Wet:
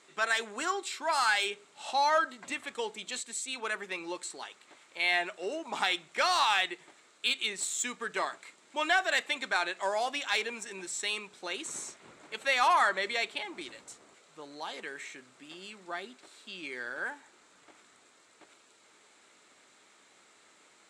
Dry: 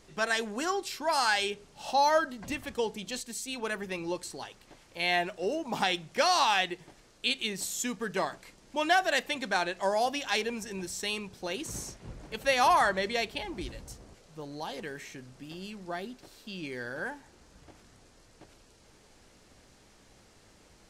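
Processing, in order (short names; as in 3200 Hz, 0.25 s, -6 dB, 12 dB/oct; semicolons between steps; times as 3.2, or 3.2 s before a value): speaker cabinet 400–9600 Hz, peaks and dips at 510 Hz -5 dB, 750 Hz -3 dB, 1300 Hz +5 dB, 2200 Hz +5 dB, 3800 Hz +7 dB, 7600 Hz +8 dB; in parallel at -3.5 dB: soft clip -20.5 dBFS, distortion -12 dB; on the sum: bell 5100 Hz -6.5 dB 1 oct; gain -4.5 dB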